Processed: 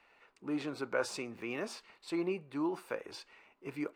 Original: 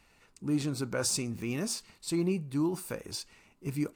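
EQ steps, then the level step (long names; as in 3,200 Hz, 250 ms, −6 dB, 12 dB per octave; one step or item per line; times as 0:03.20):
three-way crossover with the lows and the highs turned down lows −20 dB, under 350 Hz, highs −20 dB, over 3,300 Hz
+2.0 dB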